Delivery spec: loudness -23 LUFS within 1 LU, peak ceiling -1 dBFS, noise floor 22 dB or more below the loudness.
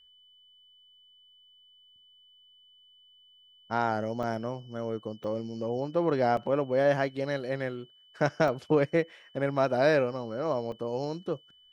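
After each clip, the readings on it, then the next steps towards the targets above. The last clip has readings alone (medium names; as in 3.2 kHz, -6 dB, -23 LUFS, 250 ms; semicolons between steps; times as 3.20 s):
dropouts 5; longest dropout 2.1 ms; steady tone 3 kHz; tone level -57 dBFS; loudness -29.5 LUFS; peak level -10.5 dBFS; loudness target -23.0 LUFS
-> interpolate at 4.23/5.24/6.37/8.48/10.72 s, 2.1 ms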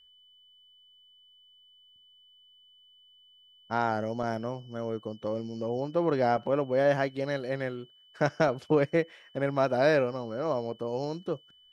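dropouts 0; steady tone 3 kHz; tone level -57 dBFS
-> band-stop 3 kHz, Q 30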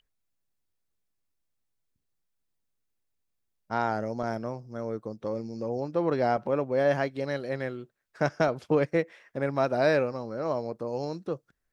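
steady tone not found; loudness -29.5 LUFS; peak level -10.5 dBFS; loudness target -23.0 LUFS
-> trim +6.5 dB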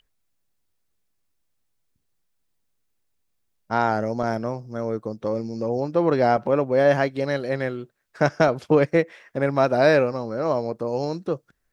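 loudness -23.0 LUFS; peak level -4.0 dBFS; noise floor -73 dBFS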